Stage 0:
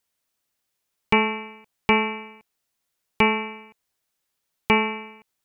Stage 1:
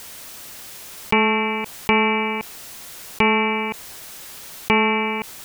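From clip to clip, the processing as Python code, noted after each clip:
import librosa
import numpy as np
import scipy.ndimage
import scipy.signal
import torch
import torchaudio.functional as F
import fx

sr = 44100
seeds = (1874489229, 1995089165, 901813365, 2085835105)

y = fx.env_flatten(x, sr, amount_pct=70)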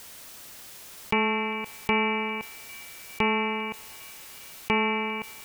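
y = fx.echo_banded(x, sr, ms=401, feedback_pct=76, hz=2400.0, wet_db=-19.5)
y = y * librosa.db_to_amplitude(-7.0)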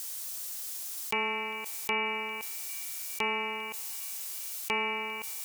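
y = fx.bass_treble(x, sr, bass_db=-13, treble_db=14)
y = y * librosa.db_to_amplitude(-6.0)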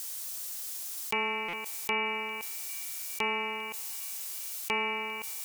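y = fx.buffer_glitch(x, sr, at_s=(1.48,), block=256, repeats=8)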